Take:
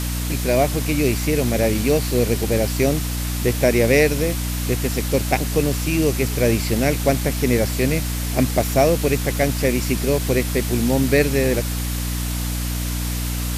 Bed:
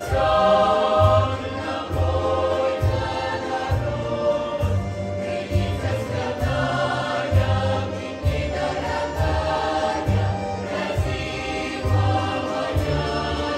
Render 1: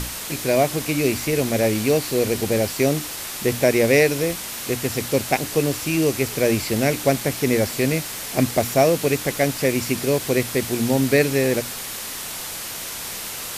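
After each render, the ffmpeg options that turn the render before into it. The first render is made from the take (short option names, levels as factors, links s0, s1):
-af "bandreject=f=60:t=h:w=6,bandreject=f=120:t=h:w=6,bandreject=f=180:t=h:w=6,bandreject=f=240:t=h:w=6,bandreject=f=300:t=h:w=6"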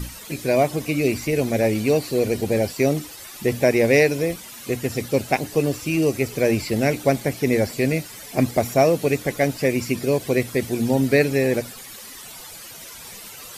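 -af "afftdn=nr=13:nf=-32"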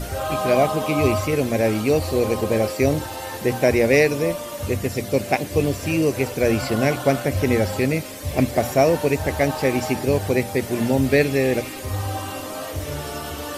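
-filter_complex "[1:a]volume=0.447[s0];[0:a][s0]amix=inputs=2:normalize=0"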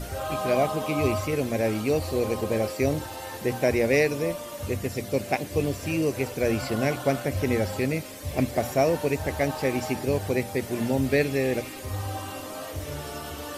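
-af "volume=0.531"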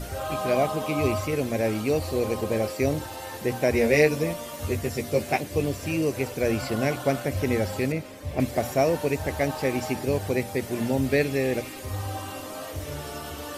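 -filter_complex "[0:a]asettb=1/sr,asplit=3[s0][s1][s2];[s0]atrim=end=3.734[s3];[s1]atrim=start=3.73:end=5.41,asetpts=PTS-STARTPTS,afade=t=in:d=0.004:c=qsin,afade=t=out:st=1.676:d=0.004:c=qsin,asplit=2[s4][s5];[s5]adelay=13,volume=0.708[s6];[s4][s6]amix=inputs=2:normalize=0,atrim=end_sample=74088[s7];[s2]atrim=start=5.406[s8];[s3][s7]acrossfade=d=0.004:c1=hsin:c2=qsin[s9];[s9][s8]acrossfade=d=0.004:c1=qsin:c2=hsin,asettb=1/sr,asplit=3[s10][s11][s12];[s10]atrim=end=7.924[s13];[s11]atrim=start=7.92:end=8.4,asetpts=PTS-STARTPTS,afade=t=in:d=0.004:c=qsin,afade=t=out:st=0.476:d=0.004:c=qsin,highshelf=f=3700:g=-10.5[s14];[s12]atrim=start=8.396[s15];[s13][s14]acrossfade=d=0.004:c1=hsin:c2=qsin[s16];[s16][s15]acrossfade=d=0.004:c1=qsin:c2=hsin"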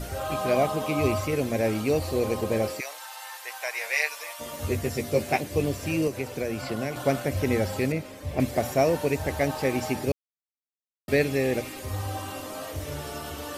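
-filter_complex "[0:a]asplit=3[s0][s1][s2];[s0]afade=t=out:st=2.79:d=0.02[s3];[s1]highpass=f=880:w=0.5412,highpass=f=880:w=1.3066,afade=t=in:st=2.79:d=0.02,afade=t=out:st=4.39:d=0.02[s4];[s2]afade=t=in:st=4.39:d=0.02[s5];[s3][s4][s5]amix=inputs=3:normalize=0,asettb=1/sr,asplit=3[s6][s7][s8];[s6]atrim=end=6.074[s9];[s7]atrim=start=6.07:end=6.96,asetpts=PTS-STARTPTS,afade=t=in:d=0.004:c=qsin,afade=t=out:st=0.886:d=0.004:c=qsin,acrossover=split=95|5600[s10][s11][s12];[s10]acompressor=threshold=0.00355:ratio=4[s13];[s11]acompressor=threshold=0.0447:ratio=4[s14];[s12]acompressor=threshold=0.00398:ratio=4[s15];[s13][s14][s15]amix=inputs=3:normalize=0[s16];[s8]atrim=start=6.956[s17];[s9][s16]acrossfade=d=0.004:c1=hsin:c2=qsin[s18];[s18][s17]acrossfade=d=0.004:c1=qsin:c2=hsin,asplit=3[s19][s20][s21];[s19]atrim=end=10.12,asetpts=PTS-STARTPTS,afade=t=out:st=10.116:d=0.004:c=hsin[s22];[s20]atrim=start=10.12:end=11.08,asetpts=PTS-STARTPTS,volume=0[s23];[s21]atrim=start=11.08,asetpts=PTS-STARTPTS,afade=t=in:d=0.004:c=hsin[s24];[s22][s23][s24]concat=n=3:v=0:a=1"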